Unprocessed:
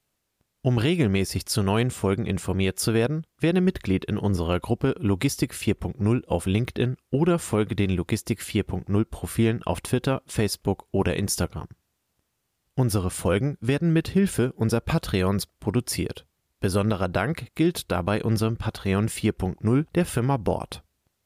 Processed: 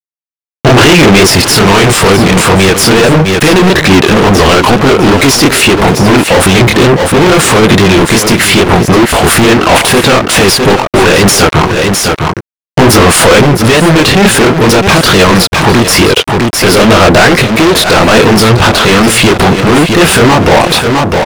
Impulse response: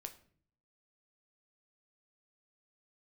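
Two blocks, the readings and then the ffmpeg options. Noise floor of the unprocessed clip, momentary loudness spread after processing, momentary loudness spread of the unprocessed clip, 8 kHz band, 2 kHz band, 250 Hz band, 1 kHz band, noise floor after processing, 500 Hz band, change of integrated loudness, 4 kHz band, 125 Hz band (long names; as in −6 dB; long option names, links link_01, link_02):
−76 dBFS, 3 LU, 5 LU, +23.5 dB, +26.5 dB, +17.5 dB, +25.5 dB, below −85 dBFS, +20.5 dB, +20.0 dB, +26.5 dB, +15.0 dB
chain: -filter_complex "[0:a]asplit=2[link_01][link_02];[link_02]acompressor=threshold=-33dB:ratio=6,volume=2dB[link_03];[link_01][link_03]amix=inputs=2:normalize=0,aeval=exprs='sgn(val(0))*max(abs(val(0))-0.00944,0)':channel_layout=same,flanger=delay=20:depth=7.7:speed=2.3,asplit=2[link_04][link_05];[link_05]highpass=frequency=720:poles=1,volume=34dB,asoftclip=type=tanh:threshold=-8.5dB[link_06];[link_04][link_06]amix=inputs=2:normalize=0,lowpass=frequency=2400:poles=1,volume=-6dB,asoftclip=type=hard:threshold=-21dB,asplit=2[link_07][link_08];[link_08]aecho=0:1:657:0.266[link_09];[link_07][link_09]amix=inputs=2:normalize=0,alimiter=level_in=26.5dB:limit=-1dB:release=50:level=0:latency=1,volume=-1dB"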